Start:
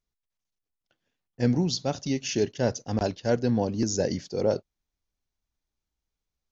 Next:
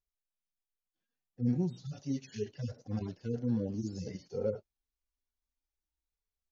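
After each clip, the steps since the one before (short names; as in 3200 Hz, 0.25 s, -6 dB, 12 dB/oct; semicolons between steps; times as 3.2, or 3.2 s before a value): median-filter separation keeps harmonic; gain -6 dB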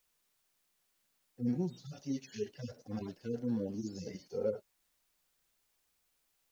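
bell 100 Hz -9 dB 1.4 oct; added noise white -78 dBFS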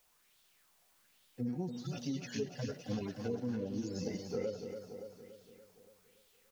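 compressor 6:1, threshold -41 dBFS, peak gain reduction 12 dB; feedback echo 0.286 s, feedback 55%, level -7.5 dB; LFO bell 1.2 Hz 680–3600 Hz +8 dB; gain +6 dB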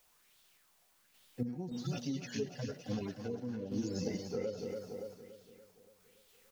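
random-step tremolo; gain +3.5 dB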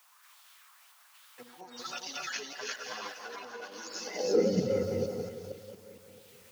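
reverse delay 0.23 s, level 0 dB; delay with a stepping band-pass 0.21 s, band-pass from 490 Hz, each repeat 1.4 oct, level -10 dB; high-pass sweep 1100 Hz -> 91 Hz, 4.09–4.68; gain +6 dB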